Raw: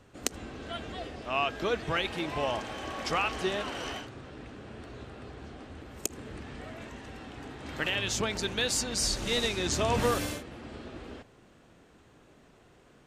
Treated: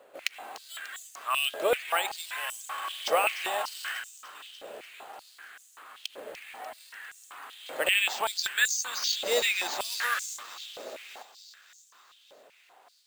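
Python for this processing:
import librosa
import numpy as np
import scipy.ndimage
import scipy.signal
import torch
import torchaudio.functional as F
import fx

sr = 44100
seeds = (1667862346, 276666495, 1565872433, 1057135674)

y = fx.echo_wet_highpass(x, sr, ms=295, feedback_pct=69, hz=4100.0, wet_db=-8)
y = np.repeat(scipy.signal.resample_poly(y, 1, 4), 4)[:len(y)]
y = fx.filter_held_highpass(y, sr, hz=5.2, low_hz=560.0, high_hz=6600.0)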